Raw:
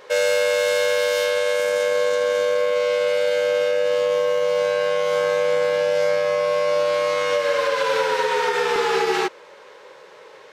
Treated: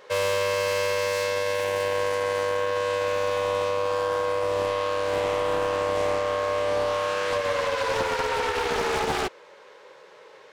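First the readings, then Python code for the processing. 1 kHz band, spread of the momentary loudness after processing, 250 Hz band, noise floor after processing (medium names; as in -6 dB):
-1.5 dB, 1 LU, no reading, -50 dBFS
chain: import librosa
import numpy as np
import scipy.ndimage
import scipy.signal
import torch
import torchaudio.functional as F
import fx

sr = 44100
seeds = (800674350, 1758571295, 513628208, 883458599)

y = fx.doppler_dist(x, sr, depth_ms=0.8)
y = F.gain(torch.from_numpy(y), -4.5).numpy()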